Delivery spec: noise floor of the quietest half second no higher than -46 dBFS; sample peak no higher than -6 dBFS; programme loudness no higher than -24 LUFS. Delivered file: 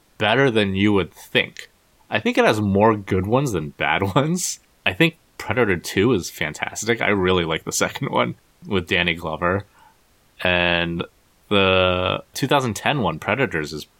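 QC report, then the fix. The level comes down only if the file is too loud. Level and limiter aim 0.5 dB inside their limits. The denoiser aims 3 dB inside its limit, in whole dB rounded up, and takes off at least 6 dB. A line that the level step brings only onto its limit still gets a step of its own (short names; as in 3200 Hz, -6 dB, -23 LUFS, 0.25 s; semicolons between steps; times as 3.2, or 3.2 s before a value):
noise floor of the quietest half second -57 dBFS: OK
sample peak -2.5 dBFS: fail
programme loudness -20.5 LUFS: fail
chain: gain -4 dB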